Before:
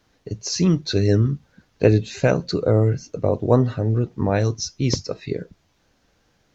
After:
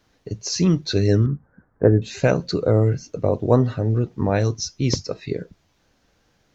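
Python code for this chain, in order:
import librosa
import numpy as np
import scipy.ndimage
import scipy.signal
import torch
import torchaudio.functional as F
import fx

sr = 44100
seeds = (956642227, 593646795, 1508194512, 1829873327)

y = fx.steep_lowpass(x, sr, hz=1700.0, slope=48, at=(1.26, 2.02))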